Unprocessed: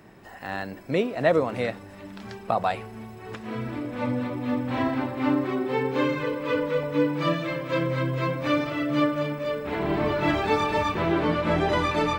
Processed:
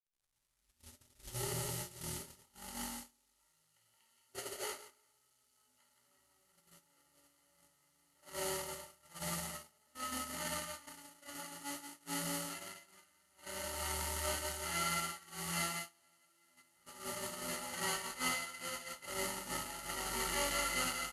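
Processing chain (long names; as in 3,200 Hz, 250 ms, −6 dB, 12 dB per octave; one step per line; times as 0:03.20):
turntable start at the beginning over 2.23 s
resonators tuned to a chord C#2 minor, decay 0.39 s
repeating echo 99 ms, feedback 28%, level −4.5 dB
power curve on the samples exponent 0.5
EQ curve with evenly spaced ripples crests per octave 1.7, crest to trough 14 dB
bit-depth reduction 8 bits, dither none
noise gate −26 dBFS, range −33 dB
wrong playback speed 78 rpm record played at 45 rpm
first-order pre-emphasis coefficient 0.97
level +10 dB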